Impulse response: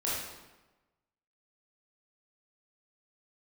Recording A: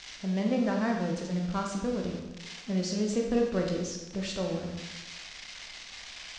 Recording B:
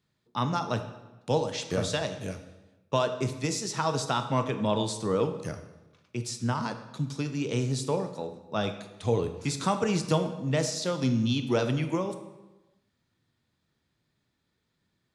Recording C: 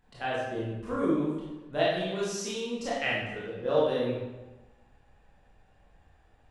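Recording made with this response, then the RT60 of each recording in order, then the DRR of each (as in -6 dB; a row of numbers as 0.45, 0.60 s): C; 1.1, 1.1, 1.1 s; 0.5, 7.5, -8.0 dB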